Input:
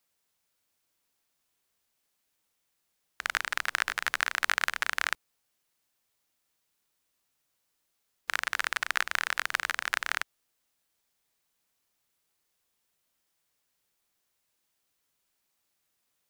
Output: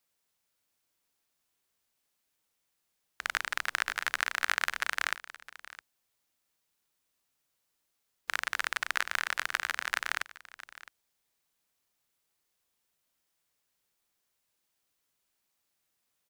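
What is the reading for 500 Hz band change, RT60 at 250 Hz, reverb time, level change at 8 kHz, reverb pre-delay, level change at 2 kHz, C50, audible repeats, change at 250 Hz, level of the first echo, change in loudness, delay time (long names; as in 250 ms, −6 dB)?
−2.0 dB, no reverb audible, no reverb audible, −2.0 dB, no reverb audible, −2.0 dB, no reverb audible, 1, −2.0 dB, −17.5 dB, −2.0 dB, 662 ms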